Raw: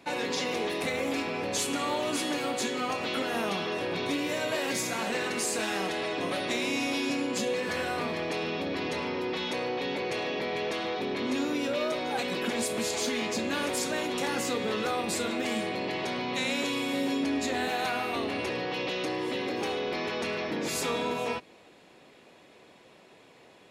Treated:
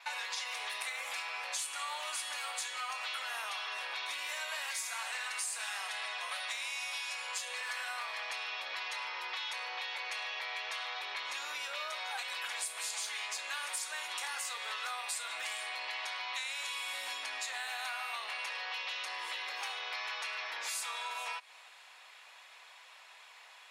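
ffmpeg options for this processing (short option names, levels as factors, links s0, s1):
-filter_complex "[0:a]asettb=1/sr,asplit=3[s0][s1][s2];[s0]atrim=end=4.304[s3];[s1]atrim=start=4.3:end=7.61,asetpts=PTS-STARTPTS,afade=t=in:d=0.004:c=qsin,afade=t=out:st=3.306:d=0.004:c=qsin,highpass=f=390:w=0.5412,highpass=f=390:w=1.3066[s4];[s2]atrim=start=7.606[s5];[s3][s4]acrossfade=d=0.004:c1=hsin:c2=qsin[s6];[s6][s5]acrossfade=d=0.004:c1=qsin:c2=hsin,highpass=f=930:w=0.5412,highpass=f=930:w=1.3066,adynamicequalizer=threshold=0.00158:dfrequency=9000:dqfactor=3.8:tfrequency=9000:tqfactor=3.8:attack=5:release=100:ratio=0.375:range=4:mode=boostabove:tftype=bell,acompressor=threshold=0.00794:ratio=4,volume=1.68"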